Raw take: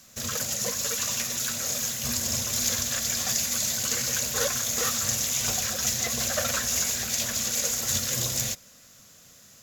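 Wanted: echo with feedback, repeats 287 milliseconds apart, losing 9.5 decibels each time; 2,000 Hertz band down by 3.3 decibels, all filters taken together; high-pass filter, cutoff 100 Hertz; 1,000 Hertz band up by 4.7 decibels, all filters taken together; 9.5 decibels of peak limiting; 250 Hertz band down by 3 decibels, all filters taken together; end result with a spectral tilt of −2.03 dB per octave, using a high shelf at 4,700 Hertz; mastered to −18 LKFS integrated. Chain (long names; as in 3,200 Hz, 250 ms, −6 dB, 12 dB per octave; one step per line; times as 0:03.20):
high-pass filter 100 Hz
parametric band 250 Hz −3.5 dB
parametric band 1,000 Hz +9 dB
parametric band 2,000 Hz −6.5 dB
high-shelf EQ 4,700 Hz −7 dB
brickwall limiter −23 dBFS
repeating echo 287 ms, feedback 33%, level −9.5 dB
level +13 dB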